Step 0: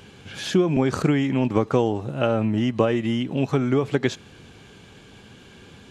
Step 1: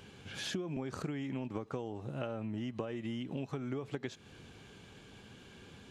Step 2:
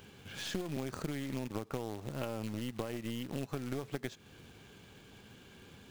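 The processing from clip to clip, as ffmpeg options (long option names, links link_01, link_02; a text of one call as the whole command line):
ffmpeg -i in.wav -af "acompressor=threshold=-28dB:ratio=6,volume=-7.5dB" out.wav
ffmpeg -i in.wav -af "acrusher=bits=3:mode=log:mix=0:aa=0.000001,aeval=exprs='(tanh(25.1*val(0)+0.75)-tanh(0.75))/25.1':channel_layout=same,volume=3dB" out.wav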